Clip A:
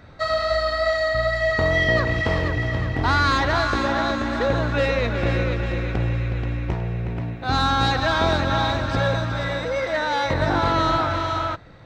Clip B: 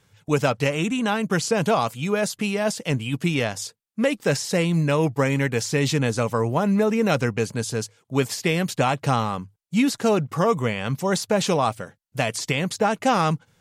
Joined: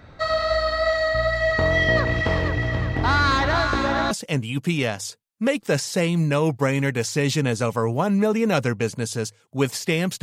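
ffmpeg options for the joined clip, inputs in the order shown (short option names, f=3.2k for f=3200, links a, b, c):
-filter_complex "[0:a]apad=whole_dur=10.22,atrim=end=10.22,atrim=end=4.112[a];[1:a]atrim=start=2.678:end=8.79[b];[a][b]acrossfade=d=0.004:c1=hsin:c2=hsin"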